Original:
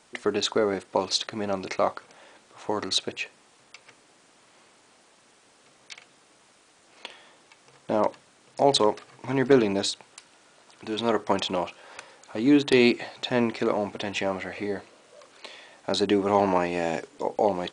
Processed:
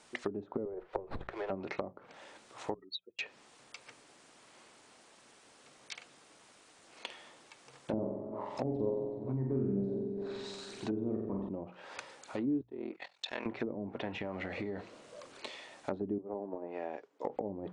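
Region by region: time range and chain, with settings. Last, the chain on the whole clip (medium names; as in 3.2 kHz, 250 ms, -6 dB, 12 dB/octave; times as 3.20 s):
0.65–1.50 s: Chebyshev high-pass 350 Hz, order 6 + sliding maximum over 5 samples
2.74–3.19 s: spectral contrast enhancement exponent 3.5 + level held to a coarse grid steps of 9 dB + upward expansion 2.5:1, over -48 dBFS
7.93–11.49 s: backward echo that repeats 187 ms, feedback 57%, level -12 dB + phaser 1 Hz, delay 1.1 ms, feedback 53% + flutter echo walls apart 7.8 m, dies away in 0.91 s
12.61–13.46 s: high-pass 1.4 kHz 6 dB/octave + gate -41 dBFS, range -15 dB + ring modulator 21 Hz
14.13–15.50 s: bass shelf 430 Hz +7.5 dB + compression 5:1, threshold -29 dBFS
16.18–17.25 s: band-pass 370–4900 Hz + peaking EQ 3.3 kHz -8.5 dB 2.3 oct + upward expansion, over -46 dBFS
whole clip: hum notches 60/120/180 Hz; low-pass that closes with the level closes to 310 Hz, closed at -22 dBFS; compression 2:1, threshold -35 dBFS; trim -2 dB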